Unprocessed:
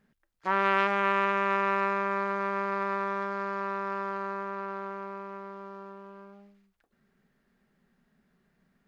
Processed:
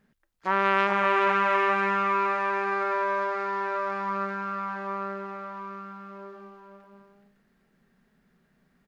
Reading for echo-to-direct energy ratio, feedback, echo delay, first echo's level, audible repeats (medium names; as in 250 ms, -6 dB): -3.5 dB, no regular repeats, 423 ms, -8.0 dB, 3